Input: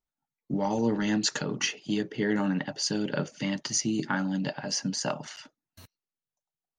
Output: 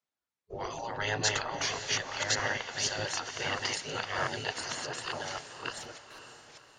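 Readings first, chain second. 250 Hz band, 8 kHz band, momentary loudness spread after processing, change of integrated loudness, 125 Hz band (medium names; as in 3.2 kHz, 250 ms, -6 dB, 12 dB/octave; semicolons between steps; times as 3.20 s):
-18.0 dB, -2.0 dB, 16 LU, -3.5 dB, -7.5 dB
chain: chunks repeated in reverse 598 ms, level -1 dB; distance through air 59 m; spectral gate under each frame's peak -15 dB weak; echo that smears into a reverb 550 ms, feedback 41%, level -11 dB; trim +4 dB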